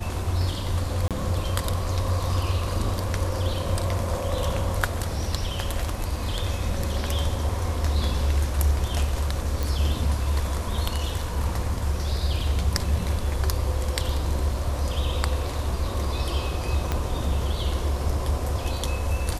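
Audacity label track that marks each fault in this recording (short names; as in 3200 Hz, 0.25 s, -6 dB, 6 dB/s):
1.080000	1.110000	gap 27 ms
9.630000	9.630000	pop
16.920000	16.920000	pop -11 dBFS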